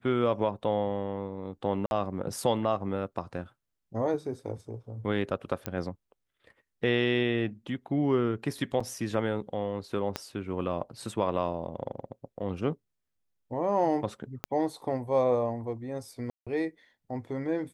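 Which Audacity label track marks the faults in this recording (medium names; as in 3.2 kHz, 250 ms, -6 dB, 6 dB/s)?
1.860000	1.910000	dropout 51 ms
5.660000	5.660000	pop -15 dBFS
8.800000	8.800000	dropout 4.8 ms
10.160000	10.160000	pop -15 dBFS
14.440000	14.440000	pop -15 dBFS
16.300000	16.470000	dropout 166 ms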